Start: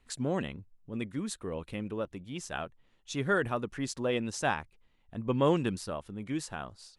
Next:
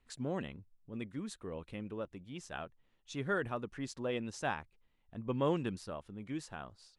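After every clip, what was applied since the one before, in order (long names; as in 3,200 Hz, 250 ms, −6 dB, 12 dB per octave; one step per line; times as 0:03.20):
high-shelf EQ 7,900 Hz −8.5 dB
level −6 dB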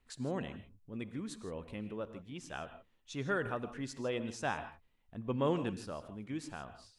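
reverb whose tail is shaped and stops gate 180 ms rising, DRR 11 dB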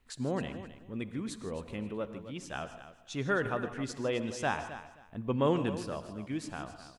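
repeating echo 264 ms, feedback 20%, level −13 dB
level +4 dB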